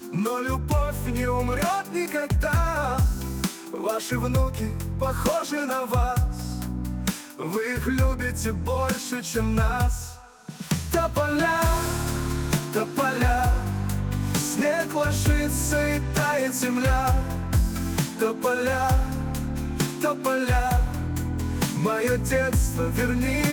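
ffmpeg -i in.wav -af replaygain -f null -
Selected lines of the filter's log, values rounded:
track_gain = +7.6 dB
track_peak = 0.191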